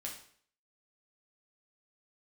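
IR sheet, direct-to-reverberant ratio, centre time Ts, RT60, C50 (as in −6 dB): −2.0 dB, 25 ms, 0.55 s, 6.5 dB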